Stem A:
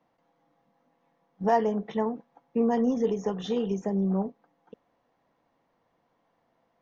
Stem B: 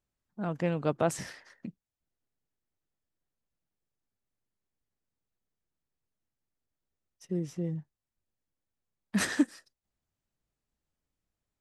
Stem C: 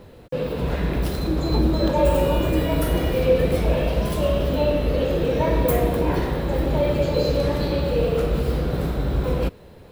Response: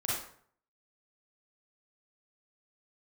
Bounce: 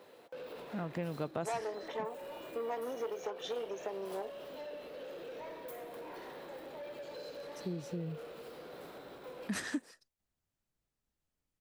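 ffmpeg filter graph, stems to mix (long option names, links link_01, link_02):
-filter_complex "[0:a]aeval=exprs='(tanh(14.1*val(0)+0.55)-tanh(0.55))/14.1':channel_layout=same,highpass=frequency=410:width=0.5412,highpass=frequency=410:width=1.3066,volume=0.5dB[link_01];[1:a]adelay=350,volume=-1.5dB[link_02];[2:a]acompressor=threshold=-29dB:ratio=6,highpass=450,asoftclip=type=tanh:threshold=-33.5dB,volume=-7dB[link_03];[link_01][link_02][link_03]amix=inputs=3:normalize=0,acompressor=threshold=-37dB:ratio=2.5"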